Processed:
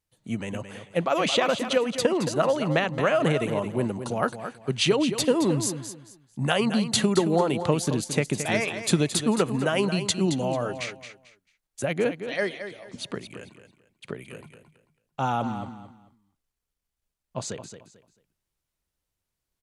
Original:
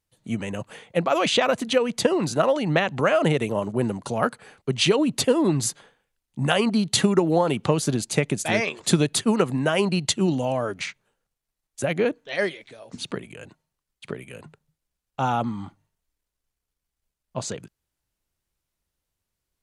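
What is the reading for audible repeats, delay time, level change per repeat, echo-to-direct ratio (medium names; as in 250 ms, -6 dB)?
3, 221 ms, -12.0 dB, -9.5 dB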